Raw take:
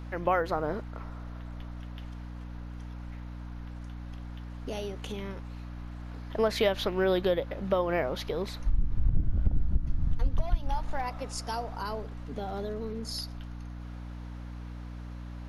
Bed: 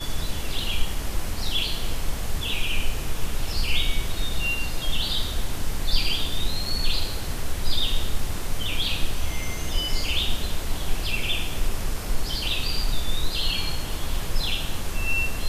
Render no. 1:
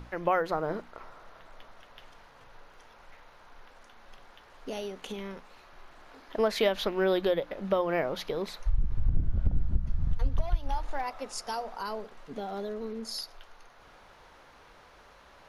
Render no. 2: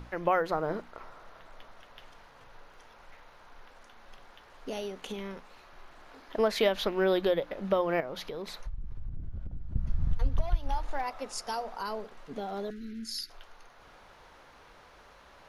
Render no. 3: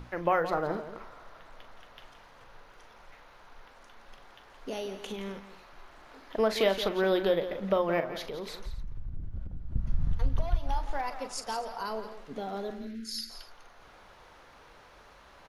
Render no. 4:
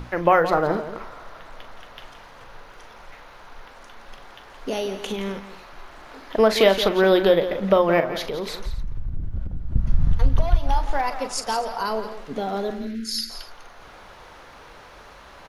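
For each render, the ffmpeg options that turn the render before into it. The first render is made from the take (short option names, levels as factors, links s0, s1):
-af "bandreject=f=60:t=h:w=6,bandreject=f=120:t=h:w=6,bandreject=f=180:t=h:w=6,bandreject=f=240:t=h:w=6,bandreject=f=300:t=h:w=6"
-filter_complex "[0:a]asettb=1/sr,asplit=3[s0][s1][s2];[s0]atrim=end=8.004[s3];[s1]atrim=start=8:end=9.76,asetpts=PTS-STARTPTS,afade=t=in:d=0.004:c=qsin,afade=t=out:st=1.756:d=0.004:c=qsin,acompressor=threshold=0.0178:ratio=4:attack=3.2:release=140:knee=1:detection=peak[s4];[s2]atrim=start=9.756[s5];[s3][s4]acrossfade=d=0.004:c1=hsin:c2=qsin[s6];[s6][s5]acrossfade=d=0.004:c1=qsin:c2=hsin,asettb=1/sr,asplit=3[s7][s8][s9];[s7]atrim=end=12.704[s10];[s8]atrim=start=12.7:end=13.3,asetpts=PTS-STARTPTS,afade=t=in:d=0.004:c=qsin,afade=t=out:st=0.596:d=0.004:c=qsin,asuperstop=centerf=730:order=12:qfactor=0.66[s11];[s9]atrim=start=13.296[s12];[s10][s11]acrossfade=d=0.004:c1=hsin:c2=qsin[s13];[s13][s12]acrossfade=d=0.004:c1=qsin:c2=hsin"
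-af "aecho=1:1:41|170|250:0.237|0.251|0.112"
-af "volume=2.99"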